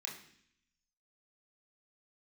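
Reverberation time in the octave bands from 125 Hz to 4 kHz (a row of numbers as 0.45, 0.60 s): 0.95, 0.90, 0.65, 0.60, 0.80, 0.80 s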